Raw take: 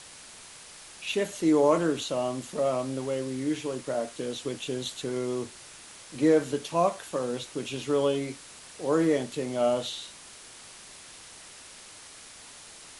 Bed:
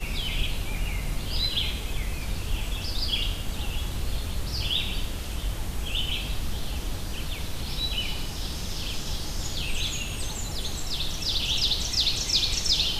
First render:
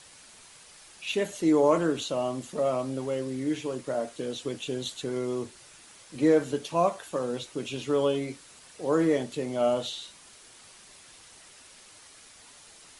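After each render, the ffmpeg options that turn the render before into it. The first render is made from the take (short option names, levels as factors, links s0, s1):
-af "afftdn=nr=6:nf=-48"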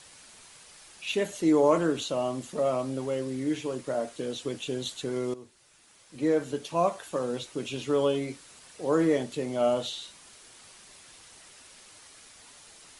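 -filter_complex "[0:a]asplit=2[s0][s1];[s0]atrim=end=5.34,asetpts=PTS-STARTPTS,afade=t=out:st=5.336:d=0.004:c=hsin:silence=0.177828[s2];[s1]atrim=start=5.34,asetpts=PTS-STARTPTS,afade=t=in:d=1.71:silence=0.177828[s3];[s2][s3]concat=n=2:v=0:a=1"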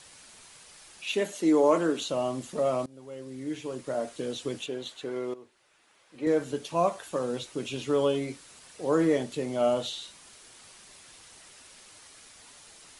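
-filter_complex "[0:a]asettb=1/sr,asplit=3[s0][s1][s2];[s0]atrim=end=1.044[s3];[s1]atrim=start=1.04:end=2.01,asetpts=PTS-STARTPTS,afade=t=in:d=0.004:c=qsin,afade=t=out:st=0.966:d=0.004:c=qsin,highpass=f=180:w=0.5412,highpass=f=180:w=1.3066[s4];[s2]atrim=start=2.006[s5];[s3][s4]acrossfade=d=0.004:c1=hsin:c2=qsin[s6];[s6][s5]acrossfade=d=0.004:c1=qsin:c2=hsin,asettb=1/sr,asplit=3[s7][s8][s9];[s7]atrim=end=4.664[s10];[s8]atrim=start=4.66:end=6.27,asetpts=PTS-STARTPTS,afade=t=in:d=0.004:c=qsin,afade=t=out:st=1.606:d=0.004:c=qsin,bass=f=250:g=-11,treble=f=4000:g=-11[s11];[s9]atrim=start=6.266[s12];[s10][s11]acrossfade=d=0.004:c1=hsin:c2=qsin[s13];[s13][s12]acrossfade=d=0.004:c1=qsin:c2=hsin,asplit=2[s14][s15];[s14]atrim=end=2.86,asetpts=PTS-STARTPTS,afade=t=out:st=2.856:d=0.004:c=hsin:silence=0.0668344[s16];[s15]atrim=start=2.86,asetpts=PTS-STARTPTS,afade=t=in:d=1.24:silence=0.0668344[s17];[s16][s17]concat=n=2:v=0:a=1"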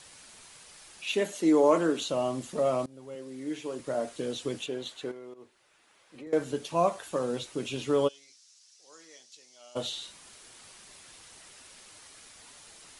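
-filter_complex "[0:a]asettb=1/sr,asplit=3[s0][s1][s2];[s0]atrim=end=3.154[s3];[s1]atrim=start=3.15:end=3.8,asetpts=PTS-STARTPTS,afade=t=in:d=0.004:c=qsin,afade=t=out:st=0.646:d=0.004:c=qsin,highpass=190[s4];[s2]atrim=start=3.796[s5];[s3][s4]acrossfade=d=0.004:c1=hsin:c2=qsin[s6];[s6][s5]acrossfade=d=0.004:c1=qsin:c2=hsin,asettb=1/sr,asplit=3[s7][s8][s9];[s7]atrim=end=5.114[s10];[s8]atrim=start=5.11:end=6.33,asetpts=PTS-STARTPTS,afade=t=in:d=0.004:c=qsin,afade=t=out:st=1.216:d=0.004:c=qsin,acompressor=threshold=0.00794:ratio=5:attack=3.2:release=140:knee=1:detection=peak[s11];[s9]atrim=start=6.326[s12];[s10][s11]acrossfade=d=0.004:c1=hsin:c2=qsin[s13];[s13][s12]acrossfade=d=0.004:c1=qsin:c2=hsin,asplit=3[s14][s15][s16];[s14]afade=t=out:st=8.07:d=0.02[s17];[s15]bandpass=f=5600:t=q:w=3.4,afade=t=in:st=8.07:d=0.02,afade=t=out:st=9.75:d=0.02[s18];[s16]afade=t=in:st=9.75:d=0.02[s19];[s17][s18][s19]amix=inputs=3:normalize=0"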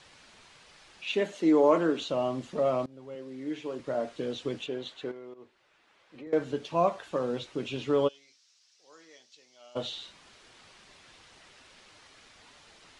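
-af "lowpass=4200"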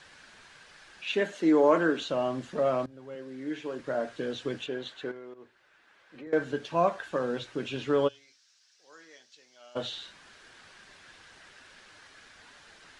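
-af "equalizer=f=1600:w=4.1:g=10,bandreject=f=60:t=h:w=6,bandreject=f=120:t=h:w=6"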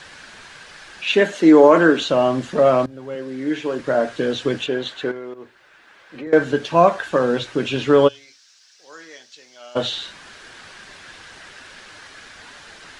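-af "volume=3.98,alimiter=limit=0.794:level=0:latency=1"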